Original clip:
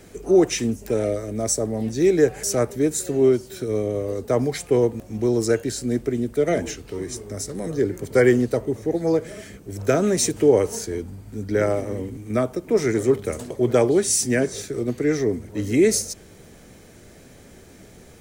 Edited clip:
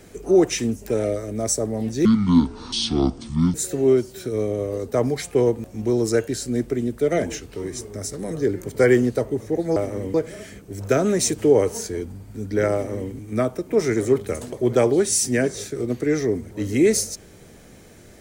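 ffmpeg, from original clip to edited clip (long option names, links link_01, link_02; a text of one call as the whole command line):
ffmpeg -i in.wav -filter_complex "[0:a]asplit=5[link_01][link_02][link_03][link_04][link_05];[link_01]atrim=end=2.054[link_06];[link_02]atrim=start=2.05:end=2.9,asetpts=PTS-STARTPTS,asetrate=25137,aresample=44100,atrim=end_sample=65763,asetpts=PTS-STARTPTS[link_07];[link_03]atrim=start=2.896:end=9.122[link_08];[link_04]atrim=start=11.708:end=12.092[link_09];[link_05]atrim=start=9.118[link_10];[link_06][link_07]acrossfade=duration=0.004:curve1=hsin:curve2=hsin[link_11];[link_11][link_08]acrossfade=duration=0.004:curve1=hsin:curve2=hsin[link_12];[link_12][link_09]acrossfade=duration=0.004:curve1=hsin:curve2=hsin[link_13];[link_13][link_10]acrossfade=duration=0.004:curve1=hsin:curve2=hsin" out.wav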